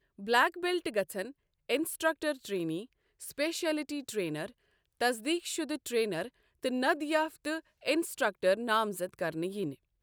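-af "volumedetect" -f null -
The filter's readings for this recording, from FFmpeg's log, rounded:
mean_volume: -33.0 dB
max_volume: -13.0 dB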